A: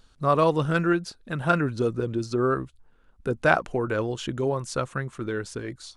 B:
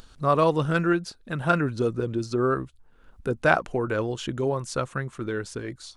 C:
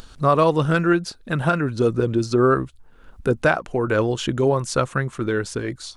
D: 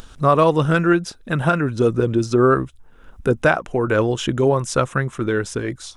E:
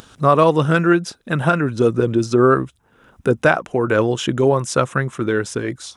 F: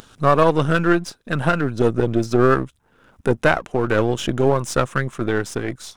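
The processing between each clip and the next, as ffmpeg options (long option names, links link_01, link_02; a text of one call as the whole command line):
ffmpeg -i in.wav -af "acompressor=mode=upward:threshold=-40dB:ratio=2.5" out.wav
ffmpeg -i in.wav -af "alimiter=limit=-13.5dB:level=0:latency=1:release=449,volume=7dB" out.wav
ffmpeg -i in.wav -af "bandreject=frequency=4400:width=6.2,volume=2dB" out.wav
ffmpeg -i in.wav -af "highpass=100,volume=1.5dB" out.wav
ffmpeg -i in.wav -af "aeval=exprs='if(lt(val(0),0),0.447*val(0),val(0))':channel_layout=same" out.wav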